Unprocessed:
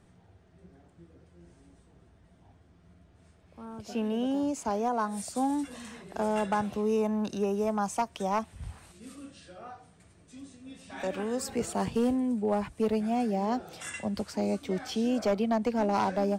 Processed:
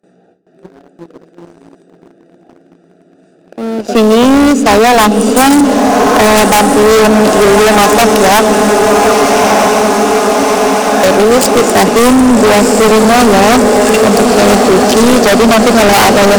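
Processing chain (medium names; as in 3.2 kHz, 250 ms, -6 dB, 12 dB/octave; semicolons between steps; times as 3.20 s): local Wiener filter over 41 samples; high-pass 190 Hz 24 dB/octave; band-stop 930 Hz, Q 6.5; echo that smears into a reverb 1243 ms, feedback 69%, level -9 dB; gate with hold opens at -59 dBFS; overdrive pedal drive 13 dB, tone 7.3 kHz, clips at -17 dBFS; on a send at -19 dB: resonant low shelf 490 Hz +10.5 dB, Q 1.5 + reverberation RT60 5.9 s, pre-delay 100 ms; on the sum: waveshaping leveller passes 2; tone controls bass -3 dB, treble +13 dB; sine folder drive 14 dB, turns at -8 dBFS; trim +4.5 dB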